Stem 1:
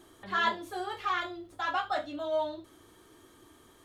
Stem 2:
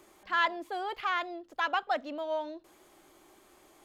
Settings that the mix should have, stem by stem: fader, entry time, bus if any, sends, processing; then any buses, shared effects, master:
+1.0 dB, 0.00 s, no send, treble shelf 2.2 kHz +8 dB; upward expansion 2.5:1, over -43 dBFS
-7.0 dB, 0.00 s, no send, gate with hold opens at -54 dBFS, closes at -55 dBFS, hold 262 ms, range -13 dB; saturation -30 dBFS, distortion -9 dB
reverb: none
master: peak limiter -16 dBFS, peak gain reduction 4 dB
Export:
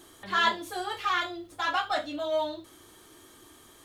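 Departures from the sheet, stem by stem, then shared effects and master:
stem 1: missing upward expansion 2.5:1, over -43 dBFS; master: missing peak limiter -16 dBFS, peak gain reduction 4 dB

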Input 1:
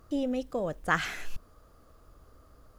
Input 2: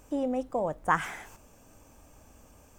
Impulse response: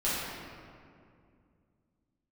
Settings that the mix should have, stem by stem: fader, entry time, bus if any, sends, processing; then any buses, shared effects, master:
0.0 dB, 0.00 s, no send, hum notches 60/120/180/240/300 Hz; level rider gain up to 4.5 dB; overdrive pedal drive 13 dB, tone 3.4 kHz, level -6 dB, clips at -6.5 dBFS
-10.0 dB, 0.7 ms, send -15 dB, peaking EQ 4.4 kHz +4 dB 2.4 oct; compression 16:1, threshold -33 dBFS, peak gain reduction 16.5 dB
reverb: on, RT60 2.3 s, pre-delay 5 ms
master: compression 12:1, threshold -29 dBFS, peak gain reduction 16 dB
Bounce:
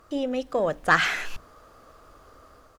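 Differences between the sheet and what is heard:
stem 2 -10.0 dB -> -16.0 dB; master: missing compression 12:1, threshold -29 dBFS, peak gain reduction 16 dB

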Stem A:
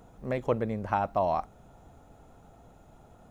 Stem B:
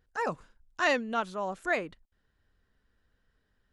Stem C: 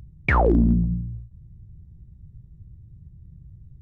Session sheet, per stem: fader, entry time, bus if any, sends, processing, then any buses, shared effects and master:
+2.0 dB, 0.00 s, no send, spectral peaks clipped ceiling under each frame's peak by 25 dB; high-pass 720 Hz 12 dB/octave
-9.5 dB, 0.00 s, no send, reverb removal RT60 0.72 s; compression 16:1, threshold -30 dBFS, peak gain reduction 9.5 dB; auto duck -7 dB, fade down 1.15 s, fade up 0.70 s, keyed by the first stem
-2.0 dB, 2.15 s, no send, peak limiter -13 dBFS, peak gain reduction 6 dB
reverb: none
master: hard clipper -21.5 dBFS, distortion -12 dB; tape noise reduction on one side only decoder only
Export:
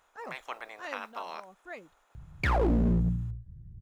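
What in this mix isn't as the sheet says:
stem A +2.0 dB -> -9.0 dB; stem B: missing compression 16:1, threshold -30 dBFS, peak gain reduction 9.5 dB

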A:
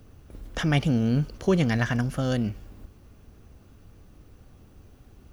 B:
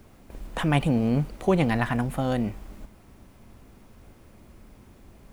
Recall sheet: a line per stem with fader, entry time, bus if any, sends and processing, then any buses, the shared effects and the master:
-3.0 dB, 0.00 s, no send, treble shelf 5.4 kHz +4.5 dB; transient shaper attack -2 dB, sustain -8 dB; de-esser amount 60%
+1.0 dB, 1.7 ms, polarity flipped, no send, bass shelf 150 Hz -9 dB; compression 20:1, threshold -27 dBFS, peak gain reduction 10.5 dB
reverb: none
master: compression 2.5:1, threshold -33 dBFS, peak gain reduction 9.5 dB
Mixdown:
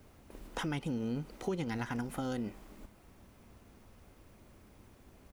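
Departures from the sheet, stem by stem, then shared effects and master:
stem A -3.0 dB -> -10.0 dB; stem B +1.0 dB -> -5.5 dB

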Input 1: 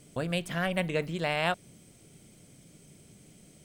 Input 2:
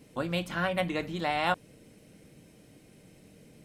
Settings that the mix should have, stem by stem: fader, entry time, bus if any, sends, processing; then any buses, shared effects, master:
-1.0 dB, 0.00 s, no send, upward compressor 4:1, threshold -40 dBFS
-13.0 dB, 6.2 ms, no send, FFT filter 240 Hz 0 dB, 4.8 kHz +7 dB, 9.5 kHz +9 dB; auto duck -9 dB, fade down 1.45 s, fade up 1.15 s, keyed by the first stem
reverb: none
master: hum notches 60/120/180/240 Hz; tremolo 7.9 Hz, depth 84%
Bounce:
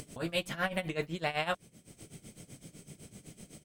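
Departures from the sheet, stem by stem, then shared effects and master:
stem 2 -13.0 dB -> -3.5 dB; master: missing hum notches 60/120/180/240 Hz

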